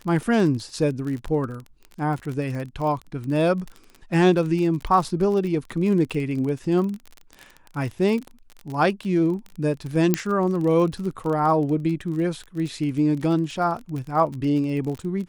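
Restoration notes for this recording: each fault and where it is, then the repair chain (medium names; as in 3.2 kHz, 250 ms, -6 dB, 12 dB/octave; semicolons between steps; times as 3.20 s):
crackle 30 per s -29 dBFS
10.14 s: pop -4 dBFS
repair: de-click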